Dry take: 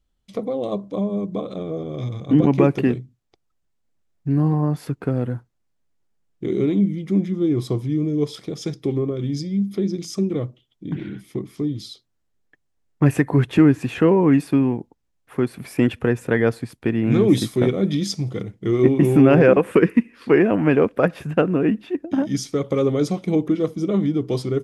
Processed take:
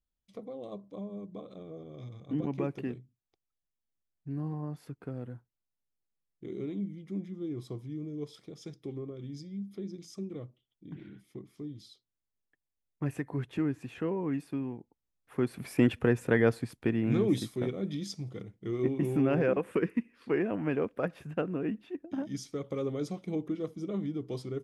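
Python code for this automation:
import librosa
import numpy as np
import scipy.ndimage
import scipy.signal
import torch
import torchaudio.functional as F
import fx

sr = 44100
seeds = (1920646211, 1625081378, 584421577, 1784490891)

y = fx.gain(x, sr, db=fx.line((14.77, -17.0), (15.6, -6.0), (16.74, -6.0), (17.55, -14.0)))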